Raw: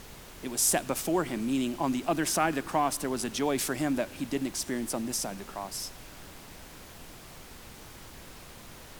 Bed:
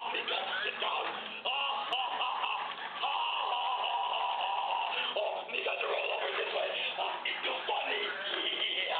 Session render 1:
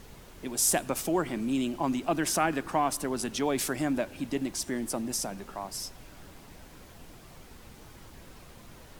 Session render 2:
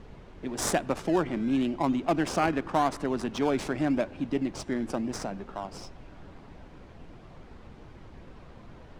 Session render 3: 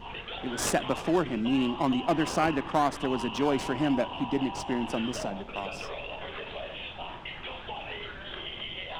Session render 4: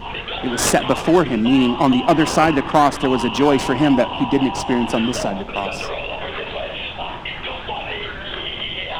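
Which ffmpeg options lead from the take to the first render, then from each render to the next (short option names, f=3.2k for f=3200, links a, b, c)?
-af "afftdn=nr=6:nf=-48"
-filter_complex "[0:a]asplit=2[a][b];[b]acrusher=samples=19:mix=1:aa=0.000001:lfo=1:lforange=11.4:lforate=0.9,volume=-8.5dB[c];[a][c]amix=inputs=2:normalize=0,adynamicsmooth=sensitivity=2.5:basefreq=3.1k"
-filter_complex "[1:a]volume=-5.5dB[a];[0:a][a]amix=inputs=2:normalize=0"
-af "volume=11.5dB,alimiter=limit=-1dB:level=0:latency=1"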